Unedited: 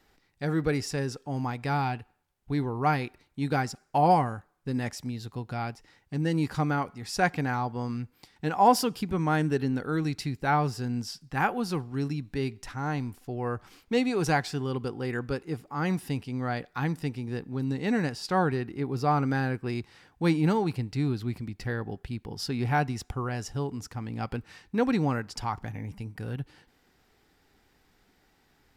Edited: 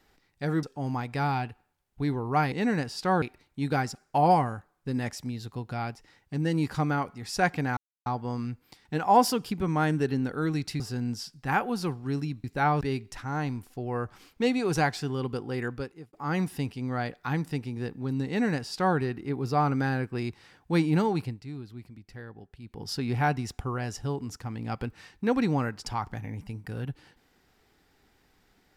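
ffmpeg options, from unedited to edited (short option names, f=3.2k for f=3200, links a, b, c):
-filter_complex "[0:a]asplit=11[a][b][c][d][e][f][g][h][i][j][k];[a]atrim=end=0.632[l];[b]atrim=start=1.128:end=3.022[m];[c]atrim=start=17.778:end=18.482[n];[d]atrim=start=3.018:end=7.57,asetpts=PTS-STARTPTS,afade=t=out:st=4.548:d=0.004:c=hsin,apad=pad_dur=0.29[o];[e]atrim=start=7.57:end=10.312,asetpts=PTS-STARTPTS,afade=t=in:d=0.004:c=hsin[p];[f]atrim=start=10.678:end=12.322[q];[g]atrim=start=10.308:end=10.682[r];[h]atrim=start=12.318:end=15.64,asetpts=PTS-STARTPTS,afade=t=out:st=2.832:d=0.49[s];[i]atrim=start=15.64:end=20.94,asetpts=PTS-STARTPTS,afade=t=in:d=0.004:c=hsin,afade=t=out:st=5.07:d=0.23:silence=0.266073[t];[j]atrim=start=20.94:end=22.13,asetpts=PTS-STARTPTS,volume=-11.5dB[u];[k]atrim=start=22.13,asetpts=PTS-STARTPTS,afade=t=in:d=0.23:silence=0.266073[v];[l][m]acrossfade=d=0.004:c1=hsin:c2=hsin[w];[w][n]acrossfade=d=0.004:c1=hsin:c2=hsin[x];[o][p]concat=n=2:v=0:a=1[y];[x][y]acrossfade=d=0.004:c1=hsin:c2=hsin[z];[z][q]acrossfade=d=0.004:c1=hsin:c2=hsin[aa];[aa][r]acrossfade=d=0.004:c1=hsin:c2=hsin[ab];[s][t][u][v]concat=n=4:v=0:a=1[ac];[ab][ac]acrossfade=d=0.004:c1=hsin:c2=hsin"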